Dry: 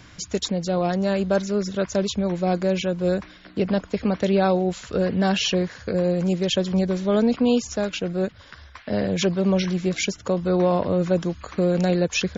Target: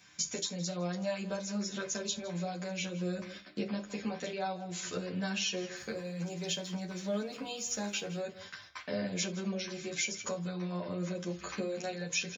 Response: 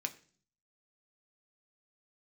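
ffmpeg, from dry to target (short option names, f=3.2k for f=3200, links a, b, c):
-filter_complex "[0:a]equalizer=f=250:t=o:w=0.33:g=-9.5,aecho=1:1:162:0.112,agate=range=-10dB:threshold=-44dB:ratio=16:detection=peak,highshelf=f=4.4k:g=10.5,acompressor=threshold=-29dB:ratio=6,asettb=1/sr,asplit=3[a][b][c];[a]atrim=end=5.764[d];[b]atrim=start=5.76:end=8.2,asetpts=PTS-STARTPTS,afade=t=in:d=0.004:c=qsin,afade=t=out:st=2.436:d=0.004:c=qsin,aeval=exprs='sgn(val(0))*max(abs(val(0))-0.00168,0)':c=same[e];[c]atrim=start=8.196[f];[d][e]acrossfade=d=0.004:c1=hsin:c2=qsin[g];[g][f]acrossfade=d=0.004:c1=qsin:c2=hsin[h];[1:a]atrim=start_sample=2205,atrim=end_sample=3969[i];[h][i]afir=irnorm=-1:irlink=0,asplit=2[j][k];[k]adelay=10.4,afreqshift=0.5[l];[j][l]amix=inputs=2:normalize=1"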